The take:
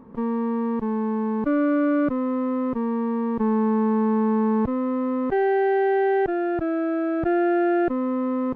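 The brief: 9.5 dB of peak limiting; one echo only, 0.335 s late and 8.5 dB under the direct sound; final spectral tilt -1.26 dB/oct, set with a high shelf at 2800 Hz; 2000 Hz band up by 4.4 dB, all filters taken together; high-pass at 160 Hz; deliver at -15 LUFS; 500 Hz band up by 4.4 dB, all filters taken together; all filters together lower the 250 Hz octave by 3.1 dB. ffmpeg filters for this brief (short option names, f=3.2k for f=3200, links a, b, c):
-af "highpass=160,equalizer=f=250:t=o:g=-6.5,equalizer=f=500:t=o:g=8.5,equalizer=f=2k:t=o:g=7.5,highshelf=f=2.8k:g=-6,alimiter=limit=-19.5dB:level=0:latency=1,aecho=1:1:335:0.376,volume=12dB"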